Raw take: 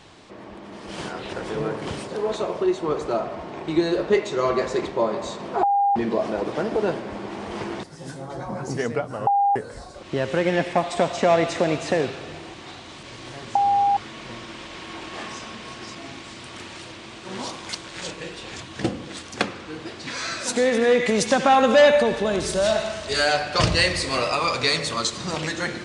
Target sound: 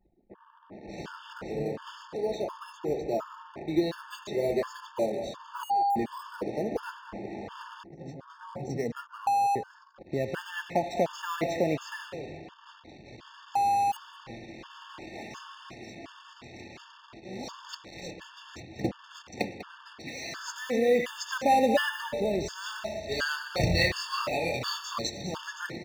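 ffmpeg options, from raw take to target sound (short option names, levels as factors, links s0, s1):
-filter_complex "[0:a]aresample=16000,aresample=44100,asplit=2[s0][s1];[s1]acrusher=samples=10:mix=1:aa=0.000001:lfo=1:lforange=6:lforate=0.24,volume=0.282[s2];[s0][s2]amix=inputs=2:normalize=0,asettb=1/sr,asplit=3[s3][s4][s5];[s3]atrim=end=23.674[s6];[s4]atrim=start=23.67:end=24.98,asetpts=PTS-STARTPTS,afade=t=in:d=0.004:c=qsin,afade=t=out:st=1.306:d=0.004:c=qsin,asplit=2[s7][s8];[s8]adelay=23,volume=0.708[s9];[s7][s9]amix=inputs=2:normalize=0,atrim=end_sample=57771[s10];[s5]atrim=start=24.976[s11];[s6][s10]acrossfade=d=0.004:c1=hsin:c2=qsin[s12];[s12][s11]acrossfade=d=0.004:c1=qsin:c2=hsin,aecho=1:1:197|394:0.2|0.0359,anlmdn=1,afftfilt=real='re*gt(sin(2*PI*1.4*pts/sr)*(1-2*mod(floor(b*sr/1024/900),2)),0)':imag='im*gt(sin(2*PI*1.4*pts/sr)*(1-2*mod(floor(b*sr/1024/900),2)),0)':win_size=1024:overlap=0.75,volume=0.447"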